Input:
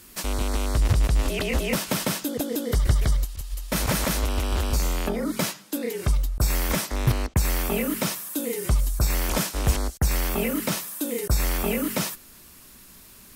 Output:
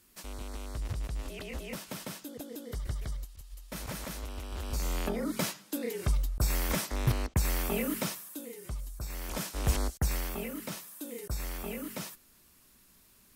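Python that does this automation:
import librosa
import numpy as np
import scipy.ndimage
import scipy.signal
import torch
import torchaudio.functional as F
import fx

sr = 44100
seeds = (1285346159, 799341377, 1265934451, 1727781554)

y = fx.gain(x, sr, db=fx.line((4.5, -15.0), (4.96, -6.0), (7.97, -6.0), (8.55, -16.5), (9.05, -16.5), (9.82, -4.0), (10.5, -13.0)))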